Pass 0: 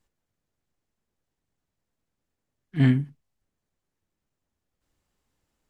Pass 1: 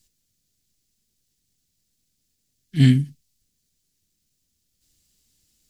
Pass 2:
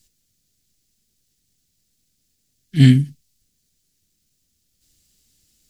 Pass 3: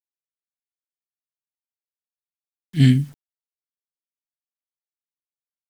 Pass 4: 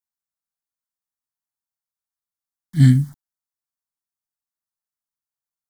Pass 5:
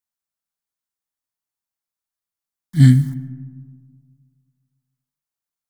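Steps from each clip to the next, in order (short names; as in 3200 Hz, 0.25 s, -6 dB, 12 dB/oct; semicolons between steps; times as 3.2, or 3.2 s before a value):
EQ curve 220 Hz 0 dB, 1000 Hz -16 dB, 4600 Hz +12 dB; gain +5.5 dB
bell 1000 Hz -5.5 dB 0.25 oct; gain +4 dB
requantised 8-bit, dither none; gain -3.5 dB
fixed phaser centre 1100 Hz, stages 4; gain +4 dB
reverb RT60 1.8 s, pre-delay 80 ms, DRR 16.5 dB; gain +2 dB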